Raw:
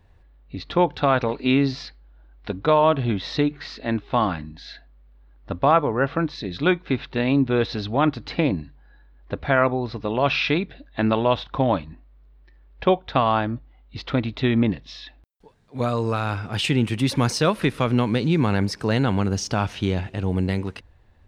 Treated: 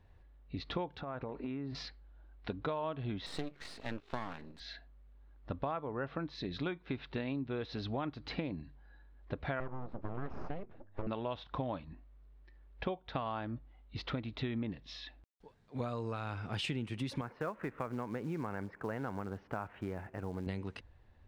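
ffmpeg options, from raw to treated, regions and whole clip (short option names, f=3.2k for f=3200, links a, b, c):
-filter_complex "[0:a]asettb=1/sr,asplit=3[a][b][c];[a]atrim=end=1.014[d];[b]atrim=start=1.01:end=1.75,asetpts=PTS-STARTPTS,afade=t=in:d=0.004:c=qsin,afade=t=out:st=0.736:d=0.004:c=qsin,lowpass=1.7k,acompressor=threshold=-28dB:ratio=12:attack=3.2:release=140:knee=1:detection=peak[e];[c]atrim=start=1.746[f];[d][e]acrossfade=d=0.004:c1=hsin:c2=qsin[g];[g][f]acrossfade=d=0.004:c1=qsin:c2=hsin,asettb=1/sr,asplit=3[h][i][j];[h]atrim=end=3.264[k];[i]atrim=start=3.26:end=4.6,asetpts=PTS-STARTPTS,afade=t=in:d=0.004:c=qsin,afade=t=out:st=1.336:d=0.004:c=qsin,highpass=f=150:p=1,aeval=exprs='max(val(0),0)':c=same[l];[j]atrim=start=4.596[m];[k][l]acrossfade=d=0.004:c1=hsin:c2=qsin[n];[n][m]acrossfade=d=0.004:c1=qsin:c2=hsin,asettb=1/sr,asplit=3[o][p][q];[o]atrim=end=9.604[r];[p]atrim=start=9.6:end=11.07,asetpts=PTS-STARTPTS,afade=t=in:d=0.004:c=qsin,afade=t=out:st=1.466:d=0.004:c=qsin,aeval=exprs='abs(val(0))':c=same,lowpass=1.1k[s];[q]atrim=start=11.066[t];[r][s]acrossfade=d=0.004:c1=hsin:c2=qsin[u];[u][t]acrossfade=d=0.004:c1=qsin:c2=hsin,asettb=1/sr,asplit=3[v][w][x];[v]atrim=end=17.214[y];[w]atrim=start=17.21:end=20.47,asetpts=PTS-STARTPTS,afade=t=in:d=0.004:c=qsin,afade=t=out:st=3.256:d=0.004:c=qsin,lowpass=f=1.8k:w=0.5412,lowpass=f=1.8k:w=1.3066,lowshelf=f=350:g=-10.5,acrusher=bits=6:mode=log:mix=0:aa=0.000001[z];[x]atrim=start=20.466[aa];[y][z]acrossfade=d=0.004:c1=hsin:c2=qsin[ab];[ab][aa]acrossfade=d=0.004:c1=qsin:c2=hsin,highshelf=f=8k:g=-9,acompressor=threshold=-28dB:ratio=6,volume=-6.5dB"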